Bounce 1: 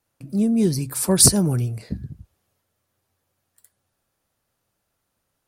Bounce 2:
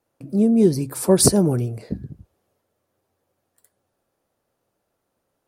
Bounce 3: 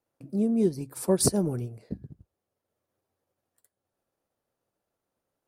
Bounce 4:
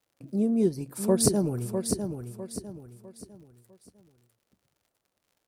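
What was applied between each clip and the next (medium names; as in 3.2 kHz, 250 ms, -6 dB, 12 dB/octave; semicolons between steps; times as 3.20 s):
peaking EQ 450 Hz +11.5 dB 2.5 oct; trim -4.5 dB
transient shaper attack +1 dB, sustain -6 dB; trim -8.5 dB
crackle 74 per s -54 dBFS; on a send: feedback delay 652 ms, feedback 35%, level -7 dB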